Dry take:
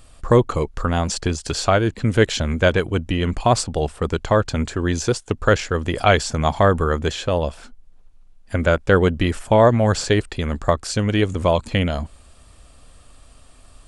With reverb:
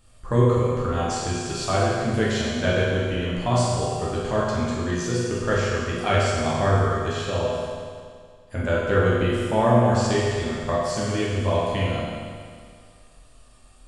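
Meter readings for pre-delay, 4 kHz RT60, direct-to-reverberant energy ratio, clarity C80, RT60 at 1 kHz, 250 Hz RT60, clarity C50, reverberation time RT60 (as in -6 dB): 8 ms, 2.0 s, -7.5 dB, 0.0 dB, 2.0 s, 2.0 s, -2.5 dB, 2.0 s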